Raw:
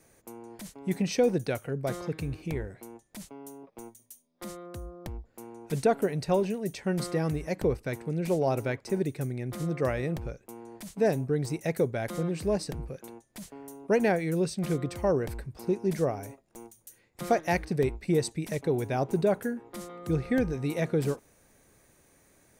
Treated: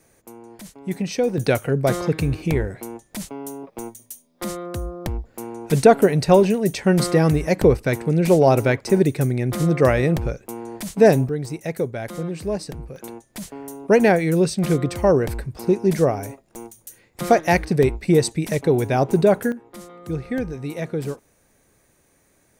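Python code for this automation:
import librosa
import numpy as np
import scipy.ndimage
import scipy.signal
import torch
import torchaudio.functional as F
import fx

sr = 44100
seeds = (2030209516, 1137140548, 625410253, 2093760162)

y = fx.gain(x, sr, db=fx.steps((0.0, 3.0), (1.38, 12.0), (11.29, 2.5), (12.96, 9.5), (19.52, 1.0)))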